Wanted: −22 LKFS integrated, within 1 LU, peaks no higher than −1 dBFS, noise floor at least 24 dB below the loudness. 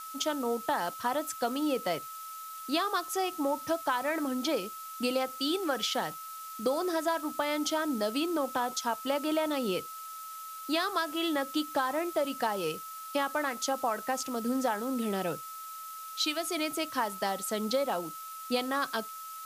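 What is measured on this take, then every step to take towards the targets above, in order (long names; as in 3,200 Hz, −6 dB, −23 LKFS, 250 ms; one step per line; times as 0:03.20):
interfering tone 1,300 Hz; level of the tone −41 dBFS; background noise floor −43 dBFS; target noise floor −56 dBFS; integrated loudness −32.0 LKFS; sample peak −15.5 dBFS; target loudness −22.0 LKFS
→ notch filter 1,300 Hz, Q 30
noise reduction from a noise print 13 dB
level +10 dB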